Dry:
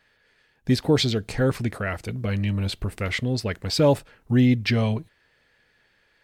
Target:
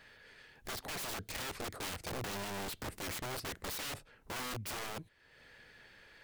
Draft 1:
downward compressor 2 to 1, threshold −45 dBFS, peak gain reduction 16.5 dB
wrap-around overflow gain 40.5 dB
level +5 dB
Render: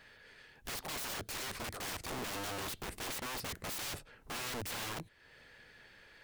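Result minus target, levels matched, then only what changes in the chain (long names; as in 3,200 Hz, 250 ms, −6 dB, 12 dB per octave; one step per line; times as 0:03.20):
downward compressor: peak gain reduction −3.5 dB
change: downward compressor 2 to 1, threshold −52 dBFS, peak gain reduction 20 dB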